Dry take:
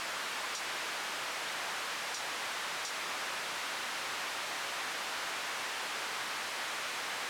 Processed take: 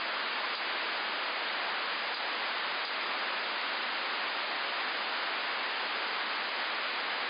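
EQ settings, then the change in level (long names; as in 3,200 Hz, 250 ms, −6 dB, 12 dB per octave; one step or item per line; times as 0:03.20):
linear-phase brick-wall band-pass 180–5,000 Hz
+4.5 dB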